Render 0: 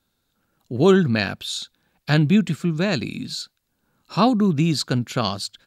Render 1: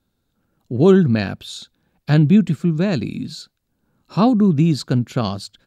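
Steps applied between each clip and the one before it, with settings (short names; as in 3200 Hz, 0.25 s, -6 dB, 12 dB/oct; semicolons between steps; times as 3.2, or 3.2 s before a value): tilt shelf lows +5 dB, about 710 Hz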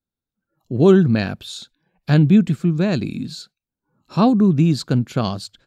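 spectral noise reduction 19 dB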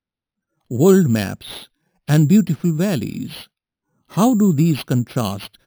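careless resampling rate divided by 6×, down none, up hold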